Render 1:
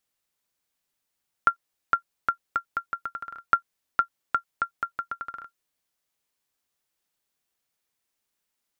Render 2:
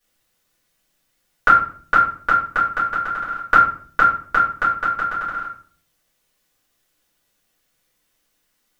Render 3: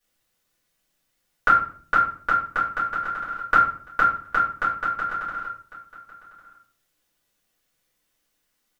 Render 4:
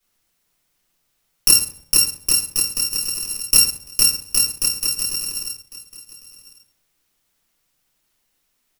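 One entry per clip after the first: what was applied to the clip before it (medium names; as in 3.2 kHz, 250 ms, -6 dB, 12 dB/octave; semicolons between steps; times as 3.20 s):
reverberation RT60 0.50 s, pre-delay 3 ms, DRR -12 dB; trim +1 dB
delay 1101 ms -19 dB; trim -4.5 dB
bit-reversed sample order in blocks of 64 samples; trim +4 dB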